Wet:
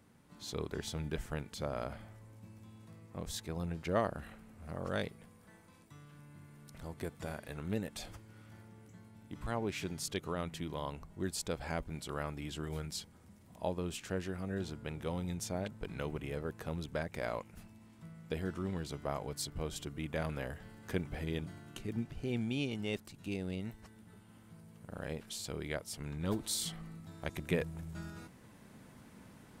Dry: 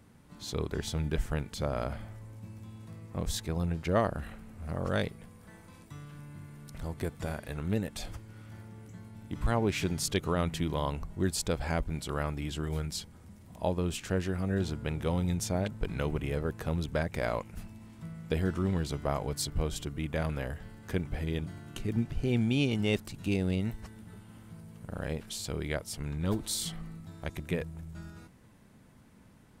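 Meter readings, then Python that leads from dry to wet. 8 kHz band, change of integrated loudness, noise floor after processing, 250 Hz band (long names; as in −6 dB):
−4.5 dB, −6.5 dB, −59 dBFS, −7.0 dB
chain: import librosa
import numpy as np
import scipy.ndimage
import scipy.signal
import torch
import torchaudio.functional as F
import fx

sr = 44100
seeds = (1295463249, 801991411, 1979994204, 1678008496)

y = fx.low_shelf(x, sr, hz=93.0, db=-9.0)
y = fx.rider(y, sr, range_db=10, speed_s=2.0)
y = F.gain(torch.from_numpy(y), -5.5).numpy()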